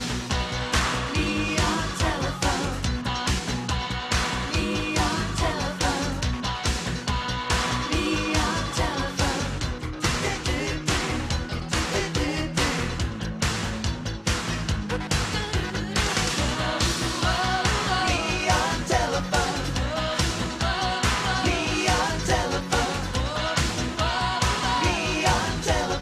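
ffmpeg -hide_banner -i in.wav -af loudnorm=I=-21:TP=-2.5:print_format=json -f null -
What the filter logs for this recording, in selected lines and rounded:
"input_i" : "-24.9",
"input_tp" : "-7.5",
"input_lra" : "2.4",
"input_thresh" : "-34.9",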